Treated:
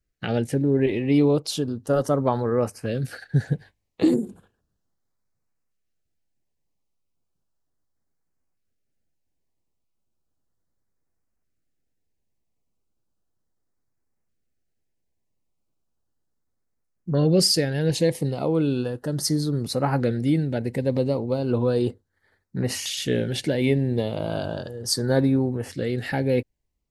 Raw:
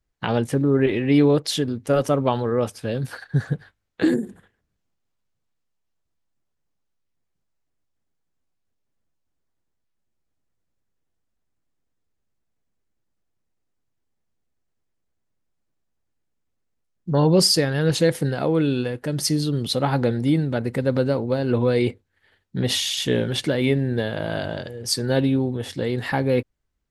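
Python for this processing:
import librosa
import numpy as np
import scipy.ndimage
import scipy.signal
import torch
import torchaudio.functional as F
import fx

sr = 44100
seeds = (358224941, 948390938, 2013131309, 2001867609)

p1 = fx.peak_eq(x, sr, hz=3400.0, db=-4.5, octaves=0.24)
p2 = fx.rider(p1, sr, range_db=10, speed_s=2.0)
p3 = p1 + (p2 * 10.0 ** (0.5 / 20.0))
p4 = fx.filter_lfo_notch(p3, sr, shape='saw_up', hz=0.35, low_hz=870.0, high_hz=3700.0, q=1.4)
y = p4 * 10.0 ** (-8.0 / 20.0)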